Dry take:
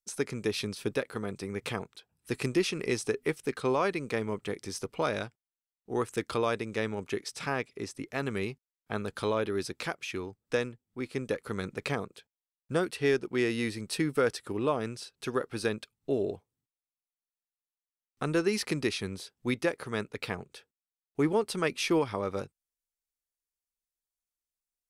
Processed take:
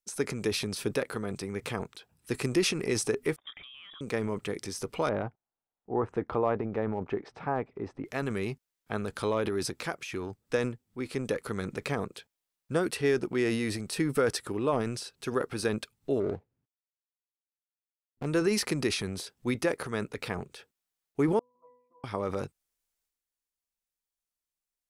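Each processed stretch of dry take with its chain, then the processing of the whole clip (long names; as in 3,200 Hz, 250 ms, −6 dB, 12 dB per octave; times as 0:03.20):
0:03.36–0:04.01: output level in coarse steps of 24 dB + voice inversion scrambler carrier 3,600 Hz
0:05.09–0:08.05: low-pass filter 1,200 Hz + parametric band 790 Hz +6.5 dB 0.55 octaves
0:16.20–0:18.26: running median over 41 samples + high-shelf EQ 3,100 Hz −10.5 dB
0:21.39–0:22.04: formant resonators in series a + resonances in every octave B, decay 0.71 s
whole clip: dynamic equaliser 3,300 Hz, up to −4 dB, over −47 dBFS, Q 1; transient designer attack +1 dB, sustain +8 dB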